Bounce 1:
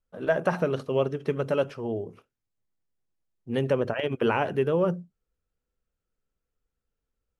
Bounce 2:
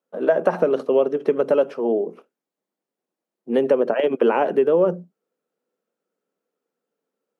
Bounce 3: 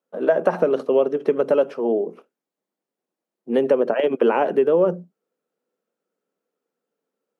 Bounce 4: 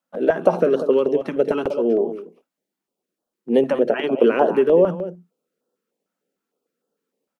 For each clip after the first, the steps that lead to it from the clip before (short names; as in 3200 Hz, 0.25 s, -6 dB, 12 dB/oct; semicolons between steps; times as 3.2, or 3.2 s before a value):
steep high-pass 180 Hz 36 dB/oct; bell 500 Hz +12 dB 2.7 oct; compressor 2.5:1, threshold -15 dBFS, peak gain reduction 6 dB
nothing audible
echo 0.192 s -11.5 dB; stuck buffer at 1.61/3.22, samples 2048, times 1; stepped notch 6.6 Hz 430–2200 Hz; gain +3.5 dB